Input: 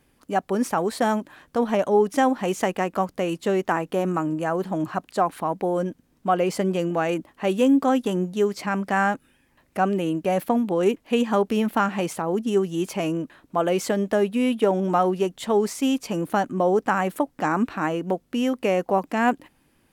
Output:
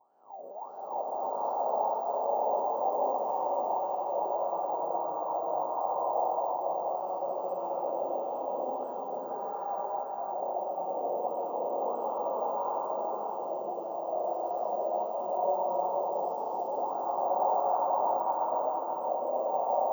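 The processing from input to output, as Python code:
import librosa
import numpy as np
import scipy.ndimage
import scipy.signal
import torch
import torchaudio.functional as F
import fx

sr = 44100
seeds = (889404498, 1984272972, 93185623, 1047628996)

p1 = fx.spec_blur(x, sr, span_ms=457.0)
p2 = fx.vibrato(p1, sr, rate_hz=0.38, depth_cents=16.0)
p3 = fx.wah_lfo(p2, sr, hz=1.6, low_hz=550.0, high_hz=1500.0, q=10.0)
p4 = p3 + fx.echo_single(p3, sr, ms=482, db=-4.5, dry=0)
p5 = fx.hpss(p4, sr, part='harmonic', gain_db=-13)
p6 = fx.curve_eq(p5, sr, hz=(150.0, 910.0, 1600.0, 5200.0, 9800.0), db=(0, 9, -25, 6, -1))
p7 = np.repeat(scipy.signal.resample_poly(p6, 1, 2), 2)[:len(p6)]
y = fx.rev_bloom(p7, sr, seeds[0], attack_ms=820, drr_db=-10.5)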